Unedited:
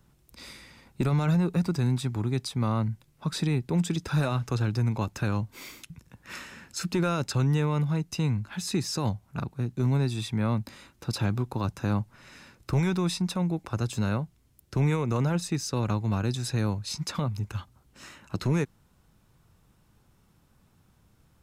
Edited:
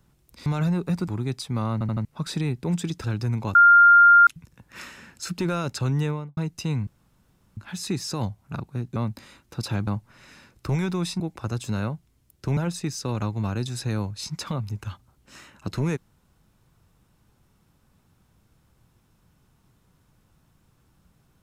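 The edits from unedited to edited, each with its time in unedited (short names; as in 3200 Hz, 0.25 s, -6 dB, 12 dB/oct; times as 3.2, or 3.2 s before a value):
0.46–1.13 cut
1.75–2.14 cut
2.79 stutter in place 0.08 s, 4 plays
4.1–4.58 cut
5.09–5.81 bleep 1400 Hz -9.5 dBFS
7.58–7.91 studio fade out
8.41 insert room tone 0.70 s
9.8–10.46 cut
11.37–11.91 cut
13.24–13.49 cut
14.86–15.25 cut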